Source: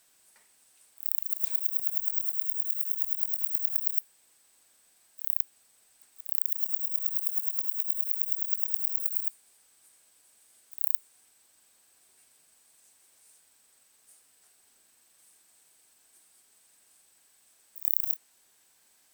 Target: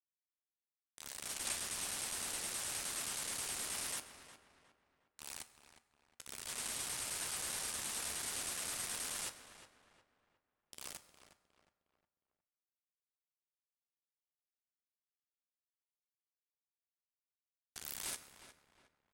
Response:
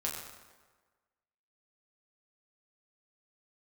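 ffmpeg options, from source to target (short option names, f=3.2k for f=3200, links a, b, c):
-filter_complex "[0:a]asplit=2[a][b];[b]adelay=13,volume=-11.5dB[c];[a][c]amix=inputs=2:normalize=0,aeval=exprs='val(0)*gte(abs(val(0)),0.0133)':c=same,lowpass=f=10k:w=0.5412,lowpass=f=10k:w=1.3066,asplit=2[d][e];[e]adelay=360,lowpass=f=2.7k:p=1,volume=-11dB,asplit=2[f][g];[g]adelay=360,lowpass=f=2.7k:p=1,volume=0.39,asplit=2[h][i];[i]adelay=360,lowpass=f=2.7k:p=1,volume=0.39,asplit=2[j][k];[k]adelay=360,lowpass=f=2.7k:p=1,volume=0.39[l];[d][f][h][j][l]amix=inputs=5:normalize=0,asplit=2[m][n];[1:a]atrim=start_sample=2205[o];[n][o]afir=irnorm=-1:irlink=0,volume=-11dB[p];[m][p]amix=inputs=2:normalize=0,volume=7.5dB"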